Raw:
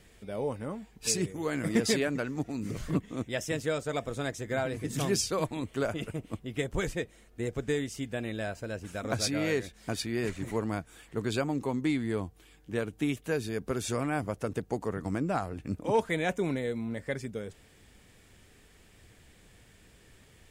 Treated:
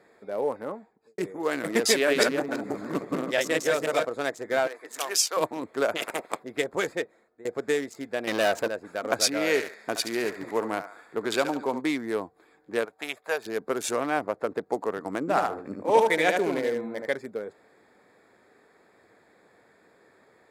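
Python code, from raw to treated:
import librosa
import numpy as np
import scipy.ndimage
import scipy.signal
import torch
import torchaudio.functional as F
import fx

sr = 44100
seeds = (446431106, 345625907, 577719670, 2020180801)

y = fx.studio_fade_out(x, sr, start_s=0.64, length_s=0.54)
y = fx.reverse_delay_fb(y, sr, ms=163, feedback_pct=43, wet_db=-0.5, at=(1.91, 4.05))
y = fx.highpass(y, sr, hz=760.0, slope=12, at=(4.67, 5.37))
y = fx.spec_clip(y, sr, under_db=23, at=(5.95, 6.42), fade=0.02)
y = fx.leveller(y, sr, passes=3, at=(8.27, 8.68))
y = fx.echo_thinned(y, sr, ms=71, feedback_pct=67, hz=980.0, wet_db=-6, at=(9.53, 11.8), fade=0.02)
y = fx.low_shelf_res(y, sr, hz=450.0, db=-12.5, q=1.5, at=(12.85, 13.46))
y = fx.high_shelf(y, sr, hz=5500.0, db=-9.5, at=(13.96, 14.66))
y = fx.echo_feedback(y, sr, ms=76, feedback_pct=24, wet_db=-3.5, at=(15.2, 17.07))
y = fx.edit(y, sr, fx.fade_out_to(start_s=6.95, length_s=0.5, floor_db=-18.5), tone=tone)
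y = fx.wiener(y, sr, points=15)
y = scipy.signal.sosfilt(scipy.signal.butter(2, 420.0, 'highpass', fs=sr, output='sos'), y)
y = fx.peak_eq(y, sr, hz=12000.0, db=6.5, octaves=0.21)
y = y * librosa.db_to_amplitude(8.0)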